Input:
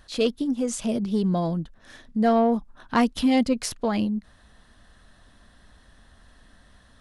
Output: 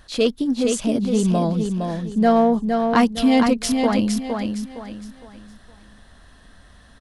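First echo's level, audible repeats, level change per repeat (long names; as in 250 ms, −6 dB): −5.0 dB, 4, −9.5 dB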